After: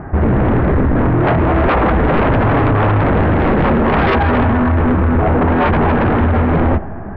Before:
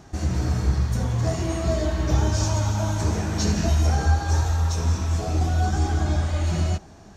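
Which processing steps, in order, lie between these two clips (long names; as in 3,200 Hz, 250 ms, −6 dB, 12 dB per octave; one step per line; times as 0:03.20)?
Butterworth low-pass 1,900 Hz 36 dB per octave
sine wavefolder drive 15 dB, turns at −9.5 dBFS
on a send: convolution reverb RT60 1.6 s, pre-delay 40 ms, DRR 19.5 dB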